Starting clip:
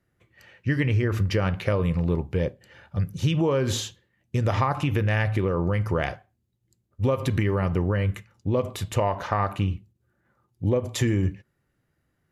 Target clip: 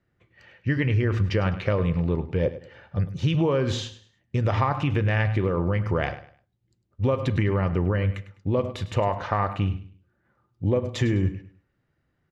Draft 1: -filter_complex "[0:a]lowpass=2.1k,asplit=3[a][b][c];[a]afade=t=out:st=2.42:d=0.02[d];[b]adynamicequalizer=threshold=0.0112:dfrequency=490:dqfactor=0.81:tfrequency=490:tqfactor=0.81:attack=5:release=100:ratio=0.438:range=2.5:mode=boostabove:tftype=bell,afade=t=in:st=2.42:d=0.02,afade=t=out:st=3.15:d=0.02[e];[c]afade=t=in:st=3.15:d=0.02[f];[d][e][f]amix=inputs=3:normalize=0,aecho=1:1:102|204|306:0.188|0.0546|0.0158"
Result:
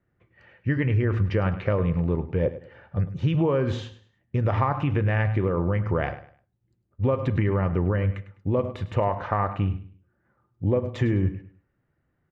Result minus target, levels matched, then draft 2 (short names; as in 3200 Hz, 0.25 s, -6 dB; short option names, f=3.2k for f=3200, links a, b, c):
4000 Hz band -7.5 dB
-filter_complex "[0:a]lowpass=4.5k,asplit=3[a][b][c];[a]afade=t=out:st=2.42:d=0.02[d];[b]adynamicequalizer=threshold=0.0112:dfrequency=490:dqfactor=0.81:tfrequency=490:tqfactor=0.81:attack=5:release=100:ratio=0.438:range=2.5:mode=boostabove:tftype=bell,afade=t=in:st=2.42:d=0.02,afade=t=out:st=3.15:d=0.02[e];[c]afade=t=in:st=3.15:d=0.02[f];[d][e][f]amix=inputs=3:normalize=0,aecho=1:1:102|204|306:0.188|0.0546|0.0158"